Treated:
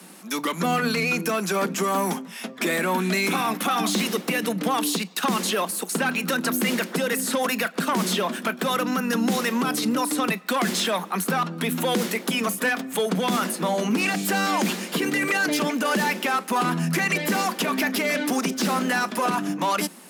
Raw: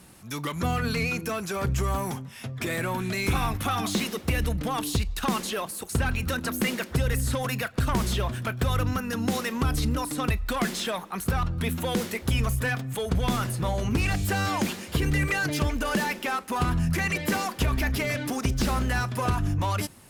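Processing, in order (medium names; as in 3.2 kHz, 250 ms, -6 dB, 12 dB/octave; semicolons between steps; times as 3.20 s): steep high-pass 170 Hz 96 dB/octave; peak limiter -21 dBFS, peak gain reduction 7 dB; trim +7 dB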